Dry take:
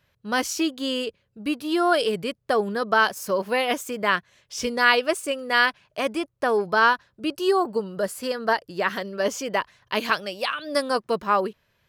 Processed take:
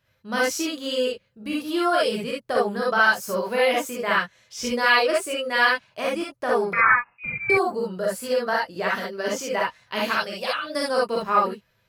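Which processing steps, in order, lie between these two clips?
6.73–7.5 inverted band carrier 2700 Hz; non-linear reverb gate 90 ms rising, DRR -4.5 dB; gain -5 dB

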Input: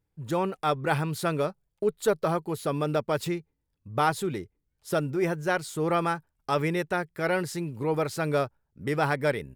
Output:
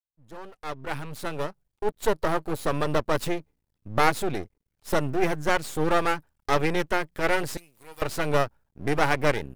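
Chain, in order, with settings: opening faded in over 2.68 s; 7.57–8.02 differentiator; half-wave rectifier; gain +6.5 dB

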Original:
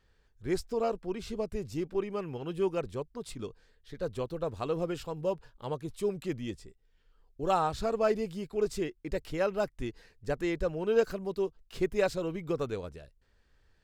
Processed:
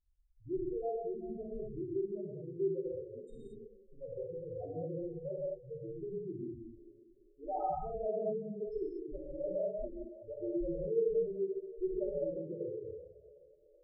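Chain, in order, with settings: split-band echo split 420 Hz, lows 0.196 s, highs 0.378 s, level -14.5 dB; loudest bins only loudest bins 2; non-linear reverb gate 0.26 s flat, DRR -5 dB; gain -9 dB

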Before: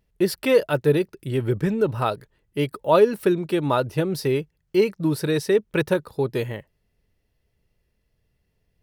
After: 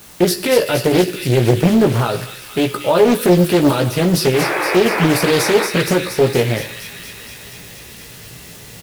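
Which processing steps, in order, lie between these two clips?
HPF 150 Hz 12 dB/oct; high shelf 2000 Hz +11.5 dB; painted sound noise, 4.33–5.67, 300–2600 Hz -28 dBFS; limiter -16 dBFS, peak gain reduction 12.5 dB; reverse; upward compressor, threshold -33 dBFS; reverse; requantised 8-bit, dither triangular; low shelf 460 Hz +9.5 dB; doubler 17 ms -5 dB; on a send: thin delay 0.234 s, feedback 75%, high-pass 2300 Hz, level -5.5 dB; on the sum: non-linear reverb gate 0.26 s falling, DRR 9.5 dB; Doppler distortion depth 0.74 ms; gain +5.5 dB

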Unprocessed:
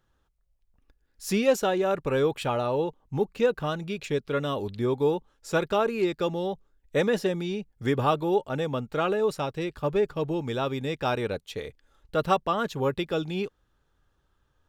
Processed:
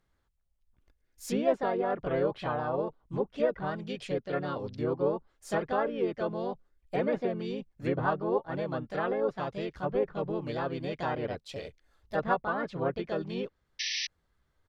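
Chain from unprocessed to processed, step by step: treble ducked by the level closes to 1600 Hz, closed at -23 dBFS; harmoniser -5 st -16 dB, +4 st -1 dB; painted sound noise, 13.79–14.07, 1700–6100 Hz -26 dBFS; gain -7 dB

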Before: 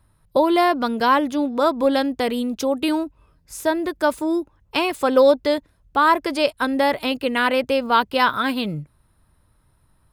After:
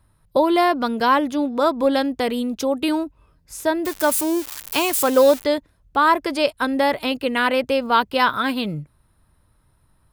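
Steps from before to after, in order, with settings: 3.85–5.44 switching spikes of -17.5 dBFS

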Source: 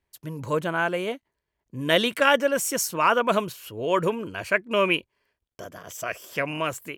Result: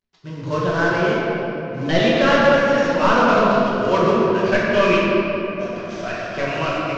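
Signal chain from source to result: CVSD 32 kbps; gate -46 dBFS, range -9 dB; shoebox room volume 210 m³, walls hard, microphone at 1.1 m

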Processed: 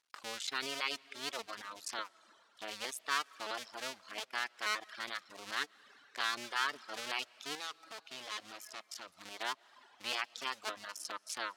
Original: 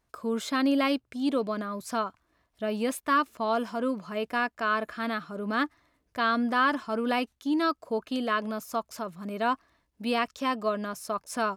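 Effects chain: cycle switcher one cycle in 2, muted; on a send at -14 dB: reverb RT60 1.8 s, pre-delay 95 ms; on the sum: reverb removal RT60 0.72 s; in parallel at -2 dB: compressor, threshold -42 dBFS, peak gain reduction 18.5 dB; 7.55–9.07 on the sum: overloaded stage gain 31 dB; band-pass 4300 Hz, Q 0.84; gain +1 dB

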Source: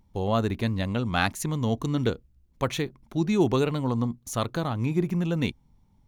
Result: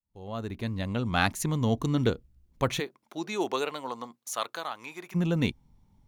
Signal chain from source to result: opening faded in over 1.30 s; 2.79–5.14 HPF 420 Hz -> 1000 Hz 12 dB/oct

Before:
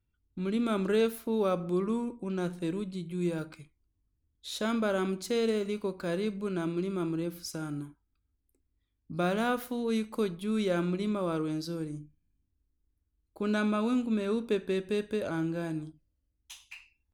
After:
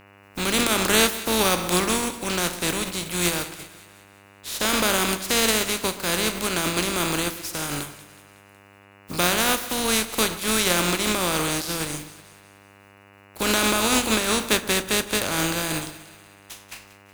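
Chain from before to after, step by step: spectral contrast lowered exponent 0.37; split-band echo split 1500 Hz, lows 0.126 s, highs 0.185 s, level -15.5 dB; buzz 100 Hz, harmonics 29, -59 dBFS -2 dB/oct; gain +7.5 dB

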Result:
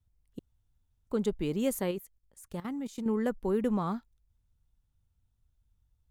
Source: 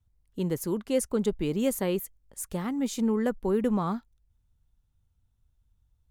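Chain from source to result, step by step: 0.39–1.07 room tone; 1.91–3.06 level quantiser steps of 16 dB; gain -3 dB

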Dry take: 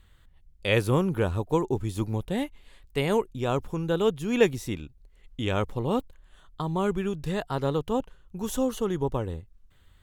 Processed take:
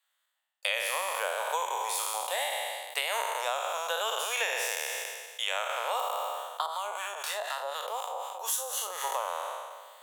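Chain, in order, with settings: spectral trails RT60 1.56 s; steep high-pass 590 Hz 48 dB/oct; gate with hold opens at -53 dBFS; high shelf 5400 Hz +10 dB; compressor 6:1, threshold -33 dBFS, peak gain reduction 14 dB; 6.66–9.04 harmonic tremolo 4 Hz, depth 70%, crossover 950 Hz; gain +5.5 dB

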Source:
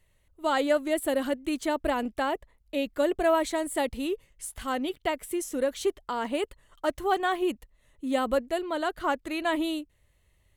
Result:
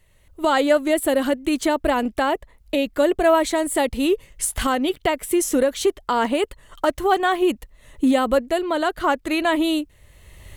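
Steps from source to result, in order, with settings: recorder AGC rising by 19 dB/s; gain +7 dB

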